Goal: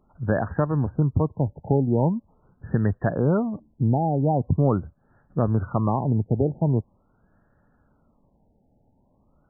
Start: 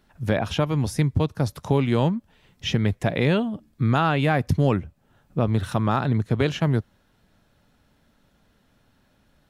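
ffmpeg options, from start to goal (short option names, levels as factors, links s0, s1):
-af "afftfilt=real='re*lt(b*sr/1024,890*pow(1900/890,0.5+0.5*sin(2*PI*0.43*pts/sr)))':imag='im*lt(b*sr/1024,890*pow(1900/890,0.5+0.5*sin(2*PI*0.43*pts/sr)))':win_size=1024:overlap=0.75"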